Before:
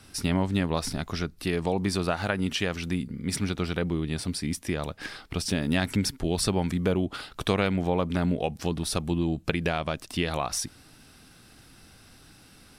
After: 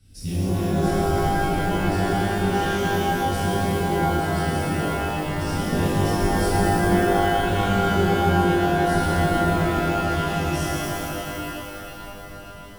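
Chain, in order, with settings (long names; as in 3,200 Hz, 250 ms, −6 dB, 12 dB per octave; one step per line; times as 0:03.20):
guitar amp tone stack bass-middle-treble 10-0-1
reverb with rising layers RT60 3.5 s, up +12 semitones, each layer −2 dB, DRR −11.5 dB
level +6.5 dB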